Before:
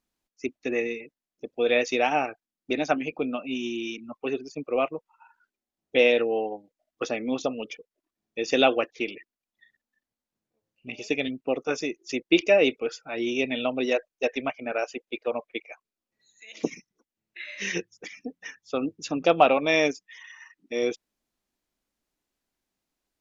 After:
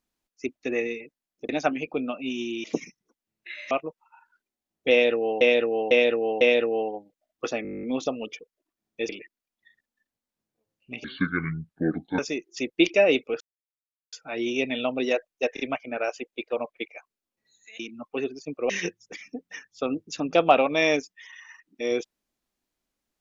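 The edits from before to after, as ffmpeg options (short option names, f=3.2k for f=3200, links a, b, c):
-filter_complex "[0:a]asplit=25[a][b][c][d][e][f][g][h][i][j][k][l][m][n][o][p][q][r][s][t][u][v][w][x][y];[a]atrim=end=1.492[z];[b]atrim=start=2.738:end=3.892[aa];[c]atrim=start=16.538:end=17.612[ab];[d]atrim=start=4.788:end=6.492[ac];[e]atrim=start=5.988:end=6.492[ad];[f]atrim=start=5.988:end=6.492[ae];[g]atrim=start=5.988:end=7.232[af];[h]atrim=start=7.208:end=7.232[ag];[i]atrim=start=7.208:end=7.232[ah];[j]atrim=start=7.208:end=7.232[ai];[k]atrim=start=7.208:end=7.232[aj];[l]atrim=start=7.208:end=7.232[ak];[m]atrim=start=7.208:end=7.232[al];[n]atrim=start=7.208:end=7.232[am];[o]atrim=start=7.208:end=7.232[an];[p]atrim=start=7.208:end=7.232[ao];[q]atrim=start=7.208:end=8.472[ap];[r]atrim=start=9.048:end=11.004[aq];[s]atrim=start=11:end=11.71,asetpts=PTS-STARTPTS,asetrate=27342,aresample=44100[ar];[t]atrim=start=11.706:end=12.93,asetpts=PTS-STARTPTS,afade=t=out:st=1.22:d=0.004:c=hsin,apad=pad_dur=0.72[as];[u]atrim=start=12.93:end=14.372,asetpts=PTS-STARTPTS,afade=t=in:d=0.004:c=hsin[at];[v]atrim=start=14.338:end=14.372[au];[w]atrim=start=14.338:end=16.542[av];[x]atrim=start=3.888:end=4.792[aw];[y]atrim=start=17.608[ax];[z][aa]acrossfade=d=0.004:c1=hsin:c2=hsin[ay];[ay][ab]acrossfade=d=0.004:c1=hsin:c2=hsin[az];[az][ac]acrossfade=d=0.004:c1=hsin:c2=hsin[ba];[ba][ad]acrossfade=d=0.004:c1=hsin:c2=hsin[bb];[bb][ae]acrossfade=d=0.004:c1=hsin:c2=hsin[bc];[bc][af]acrossfade=d=0.004:c1=hsin:c2=hsin[bd];[bd][ag]acrossfade=d=0.004:c1=hsin:c2=hsin[be];[be][ah]acrossfade=d=0.004:c1=hsin:c2=hsin[bf];[bf][ai]acrossfade=d=0.004:c1=hsin:c2=hsin[bg];[bg][aj]acrossfade=d=0.004:c1=hsin:c2=hsin[bh];[bh][ak]acrossfade=d=0.004:c1=hsin:c2=hsin[bi];[bi][al]acrossfade=d=0.004:c1=hsin:c2=hsin[bj];[bj][am]acrossfade=d=0.004:c1=hsin:c2=hsin[bk];[bk][an]acrossfade=d=0.004:c1=hsin:c2=hsin[bl];[bl][ao]acrossfade=d=0.004:c1=hsin:c2=hsin[bm];[bm][ap]acrossfade=d=0.004:c1=hsin:c2=hsin[bn];[bn][aq]acrossfade=d=0.004:c1=hsin:c2=hsin[bo];[bo][ar]acrossfade=d=0.004:c1=hsin:c2=hsin[bp];[as][at]concat=n=2:v=0:a=1[bq];[bp][bq]acrossfade=d=0.004:c1=hsin:c2=hsin[br];[br][au]acrossfade=d=0.004:c1=hsin:c2=hsin[bs];[bs][av]acrossfade=d=0.004:c1=hsin:c2=hsin[bt];[bt][aw]acrossfade=d=0.004:c1=hsin:c2=hsin[bu];[bu][ax]acrossfade=d=0.004:c1=hsin:c2=hsin"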